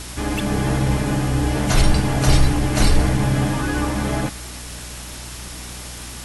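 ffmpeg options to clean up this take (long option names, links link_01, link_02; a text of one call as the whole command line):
ffmpeg -i in.wav -af "adeclick=threshold=4,bandreject=frequency=60.8:width_type=h:width=4,bandreject=frequency=121.6:width_type=h:width=4,bandreject=frequency=182.4:width_type=h:width=4,bandreject=frequency=243.2:width_type=h:width=4,bandreject=frequency=5400:width=30,afwtdn=0.02" out.wav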